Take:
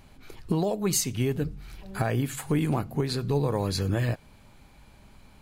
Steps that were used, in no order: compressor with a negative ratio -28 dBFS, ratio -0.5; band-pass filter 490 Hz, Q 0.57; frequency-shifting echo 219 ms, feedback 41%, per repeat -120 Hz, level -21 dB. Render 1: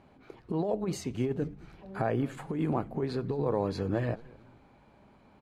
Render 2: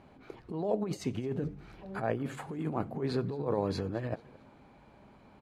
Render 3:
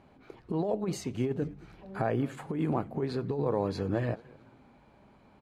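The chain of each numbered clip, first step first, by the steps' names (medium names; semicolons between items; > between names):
band-pass filter > compressor with a negative ratio > frequency-shifting echo; compressor with a negative ratio > frequency-shifting echo > band-pass filter; frequency-shifting echo > band-pass filter > compressor with a negative ratio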